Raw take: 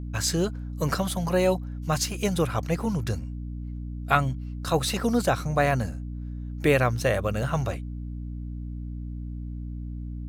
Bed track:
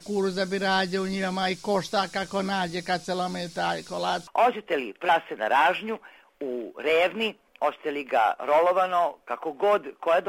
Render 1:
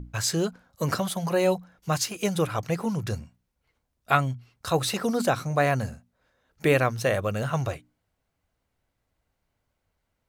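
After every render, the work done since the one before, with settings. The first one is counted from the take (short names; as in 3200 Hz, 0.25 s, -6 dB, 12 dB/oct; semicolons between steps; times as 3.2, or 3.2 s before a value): notches 60/120/180/240/300 Hz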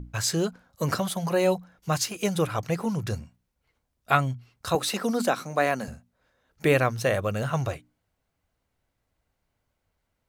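4.75–5.88 Chebyshev high-pass 200 Hz, order 3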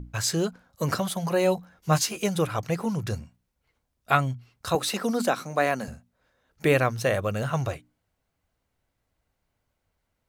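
1.56–2.2 doubler 13 ms -2 dB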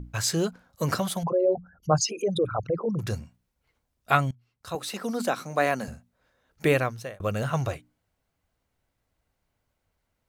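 1.23–2.99 formant sharpening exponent 3; 4.31–5.64 fade in, from -20 dB; 6.66–7.2 fade out linear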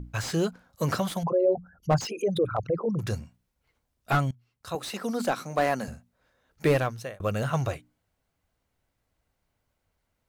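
slew limiter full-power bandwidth 110 Hz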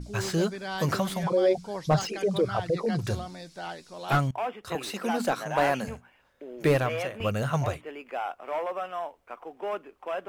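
add bed track -10.5 dB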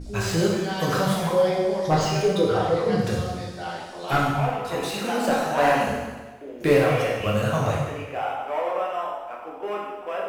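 plate-style reverb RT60 1.3 s, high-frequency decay 0.95×, DRR -4 dB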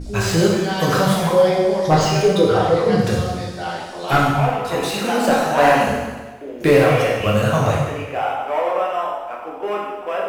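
gain +6 dB; limiter -2 dBFS, peak gain reduction 2.5 dB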